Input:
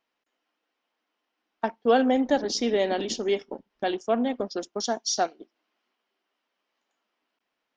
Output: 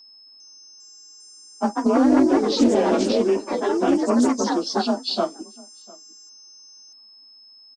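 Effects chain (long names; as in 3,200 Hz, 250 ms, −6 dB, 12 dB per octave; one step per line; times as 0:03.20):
partials spread apart or drawn together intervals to 92%
octave-band graphic EQ 125/250/500/1,000/2,000/4,000 Hz −8/+11/−7/+7/−11/−3 dB
downward compressor 6 to 1, threshold −24 dBFS, peak gain reduction 9.5 dB
steady tone 5,200 Hz −54 dBFS
slap from a distant wall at 120 metres, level −24 dB
delay with pitch and tempo change per echo 401 ms, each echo +3 semitones, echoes 3
highs frequency-modulated by the lows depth 0.22 ms
level +8 dB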